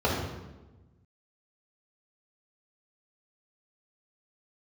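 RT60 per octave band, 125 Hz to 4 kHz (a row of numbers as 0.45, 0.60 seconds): 1.8, 1.5, 1.2, 1.0, 0.90, 0.80 seconds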